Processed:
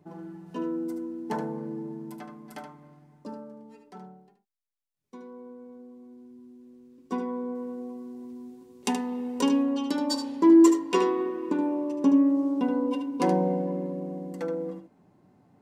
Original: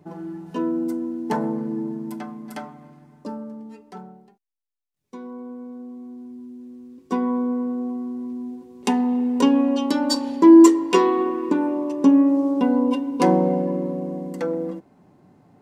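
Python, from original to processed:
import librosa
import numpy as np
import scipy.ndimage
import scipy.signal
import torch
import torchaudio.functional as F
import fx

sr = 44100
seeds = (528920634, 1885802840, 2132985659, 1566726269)

y = fx.high_shelf(x, sr, hz=3500.0, db=7.5, at=(7.55, 9.63))
y = y + 10.0 ** (-8.5 / 20.0) * np.pad(y, (int(75 * sr / 1000.0), 0))[:len(y)]
y = F.gain(torch.from_numpy(y), -7.0).numpy()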